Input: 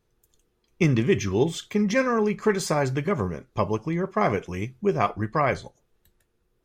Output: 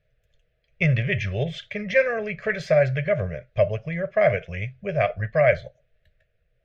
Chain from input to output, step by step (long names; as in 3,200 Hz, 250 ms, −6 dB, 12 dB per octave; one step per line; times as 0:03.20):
drawn EQ curve 150 Hz 0 dB, 300 Hz −28 dB, 620 Hz +10 dB, 900 Hz −25 dB, 1,700 Hz +3 dB, 2,400 Hz +3 dB, 5,600 Hz −14 dB, 8,400 Hz −27 dB
level +3 dB